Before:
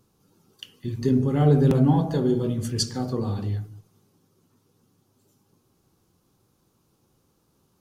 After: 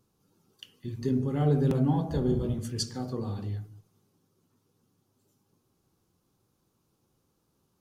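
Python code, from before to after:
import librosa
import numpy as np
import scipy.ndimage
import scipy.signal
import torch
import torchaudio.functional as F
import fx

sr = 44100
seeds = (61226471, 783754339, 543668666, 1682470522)

y = fx.octave_divider(x, sr, octaves=1, level_db=0.0, at=(2.1, 2.59))
y = y * 10.0 ** (-6.5 / 20.0)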